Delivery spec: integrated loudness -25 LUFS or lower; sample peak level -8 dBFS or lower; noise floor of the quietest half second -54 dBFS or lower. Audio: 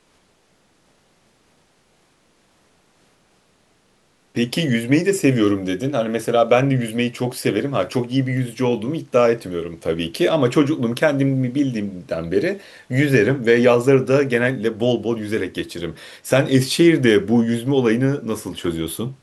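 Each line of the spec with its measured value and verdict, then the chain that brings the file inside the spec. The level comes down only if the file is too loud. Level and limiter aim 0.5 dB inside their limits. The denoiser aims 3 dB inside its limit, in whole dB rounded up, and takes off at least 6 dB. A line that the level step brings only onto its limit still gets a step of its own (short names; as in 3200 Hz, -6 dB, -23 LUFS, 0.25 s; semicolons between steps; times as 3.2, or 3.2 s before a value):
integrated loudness -19.0 LUFS: fail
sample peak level -2.5 dBFS: fail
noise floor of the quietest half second -60 dBFS: OK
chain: gain -6.5 dB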